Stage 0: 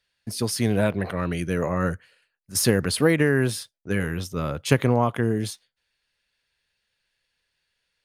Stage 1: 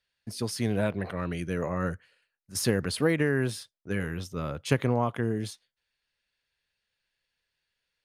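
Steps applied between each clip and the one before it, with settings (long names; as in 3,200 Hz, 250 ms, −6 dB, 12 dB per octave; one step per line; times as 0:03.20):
high-shelf EQ 11,000 Hz −7.5 dB
level −5.5 dB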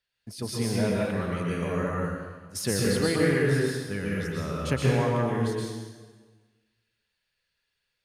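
dense smooth reverb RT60 1.4 s, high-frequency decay 0.85×, pre-delay 105 ms, DRR −4 dB
level −3 dB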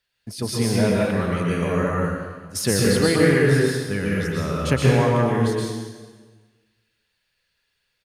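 single-tap delay 374 ms −24 dB
level +6.5 dB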